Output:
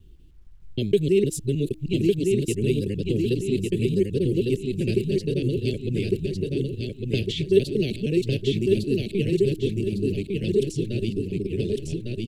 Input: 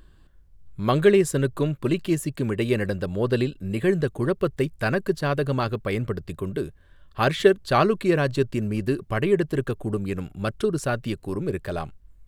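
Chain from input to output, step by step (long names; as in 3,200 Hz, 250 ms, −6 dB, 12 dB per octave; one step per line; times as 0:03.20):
reversed piece by piece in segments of 155 ms
elliptic band-stop filter 410–2,700 Hz, stop band 70 dB
low-pass that shuts in the quiet parts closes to 2,600 Hz, open at −19.5 dBFS
in parallel at −1 dB: downward compressor 5 to 1, threshold −31 dBFS, peak gain reduction 17.5 dB
on the sum: hum removal 313.3 Hz, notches 5
bit reduction 12 bits
repeating echo 1,154 ms, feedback 37%, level −3 dB
level −2.5 dB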